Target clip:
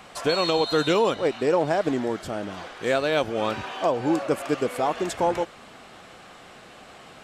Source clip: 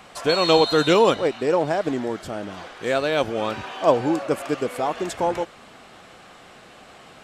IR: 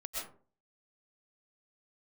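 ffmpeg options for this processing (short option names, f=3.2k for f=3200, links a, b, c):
-af "alimiter=limit=-11.5dB:level=0:latency=1:release=244"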